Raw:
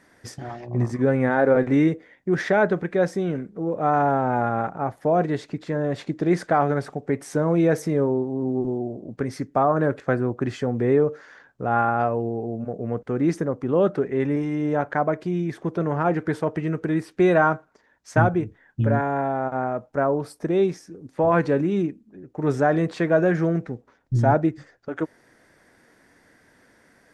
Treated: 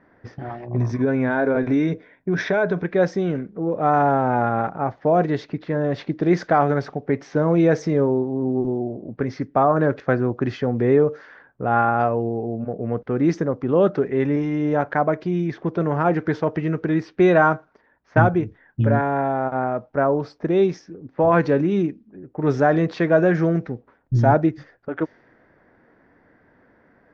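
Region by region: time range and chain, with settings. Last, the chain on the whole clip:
0:00.76–0:02.84: EQ curve with evenly spaced ripples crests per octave 1.6, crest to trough 7 dB + downward compressor 2.5 to 1, threshold −20 dBFS
whole clip: low-pass that shuts in the quiet parts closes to 1,400 Hz, open at −18 dBFS; Butterworth low-pass 6,200 Hz 48 dB per octave; level +2.5 dB

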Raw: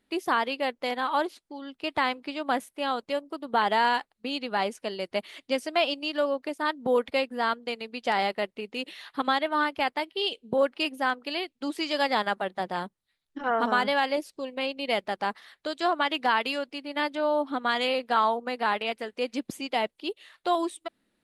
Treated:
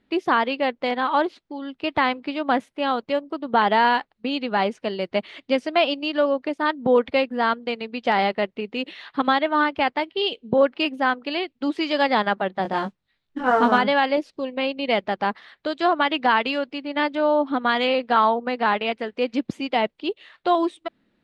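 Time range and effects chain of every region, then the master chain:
0:12.63–0:13.78: noise that follows the level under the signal 23 dB + double-tracking delay 20 ms −4 dB
whole clip: low-pass filter 3,800 Hz 12 dB per octave; parametric band 130 Hz +5 dB 2.4 octaves; level +5 dB

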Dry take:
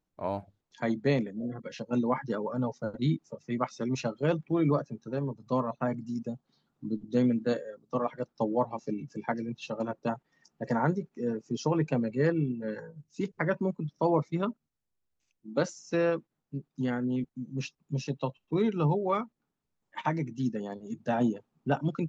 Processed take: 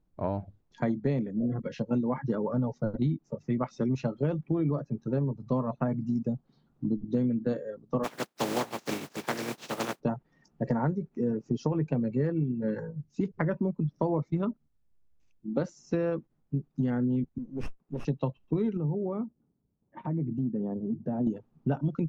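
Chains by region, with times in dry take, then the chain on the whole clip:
0:08.03–0:09.99: compressing power law on the bin magnitudes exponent 0.22 + high-pass filter 230 Hz
0:17.38–0:18.05: high-pass filter 370 Hz + high-frequency loss of the air 62 metres + windowed peak hold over 9 samples
0:18.77–0:21.27: low-shelf EQ 300 Hz +7 dB + downward compressor 3 to 1, threshold −35 dBFS + resonant band-pass 310 Hz, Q 0.61
whole clip: spectral tilt −3 dB per octave; downward compressor 6 to 1, threshold −27 dBFS; level +2 dB

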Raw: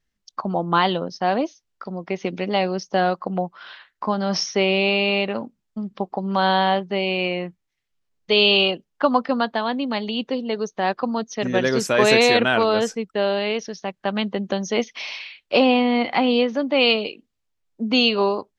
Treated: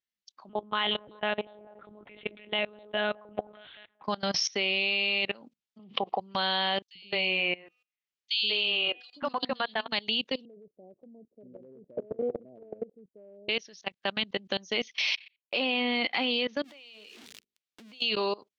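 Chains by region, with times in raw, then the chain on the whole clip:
0:00.49–0:04.04: delay with a band-pass on its return 194 ms, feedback 34%, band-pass 490 Hz, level −11 dB + one-pitch LPC vocoder at 8 kHz 210 Hz
0:05.79–0:06.21: loudspeaker in its box 170–3,800 Hz, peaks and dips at 290 Hz −4 dB, 480 Hz +5 dB, 740 Hz +8 dB, 1,100 Hz +5 dB, 1,600 Hz −10 dB, 3,000 Hz +8 dB + envelope flattener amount 50%
0:06.82–0:09.88: hum removal 248.4 Hz, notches 34 + three-band delay without the direct sound highs, lows, mids 130/200 ms, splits 310/3,200 Hz
0:10.45–0:13.49: Butterworth low-pass 610 Hz 48 dB per octave + downward compressor 16 to 1, threshold −19 dBFS
0:15.16–0:15.93: low-pass filter 4,300 Hz + noise gate −35 dBFS, range −33 dB
0:16.64–0:18.02: converter with a step at zero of −29 dBFS + mains-hum notches 50/100/150/200/250/300/350/400/450 Hz + downward compressor 4 to 1, threshold −35 dBFS
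whole clip: meter weighting curve D; output level in coarse steps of 23 dB; level −5 dB

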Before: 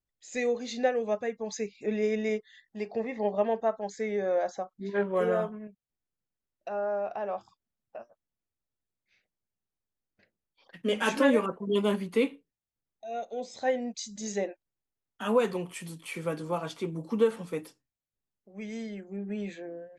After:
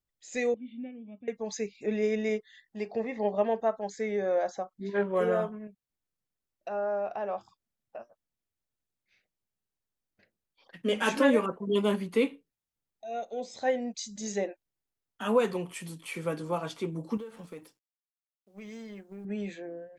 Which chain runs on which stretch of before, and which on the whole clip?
0:00.54–0:01.28: formant resonators in series i + parametric band 430 Hz −11 dB 0.4 octaves
0:17.17–0:19.25: mu-law and A-law mismatch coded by A + downward compressor, threshold −39 dBFS
whole clip: no processing

